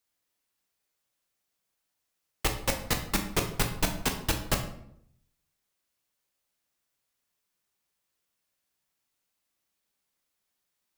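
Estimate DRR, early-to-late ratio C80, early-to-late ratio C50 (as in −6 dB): 3.5 dB, 12.0 dB, 8.5 dB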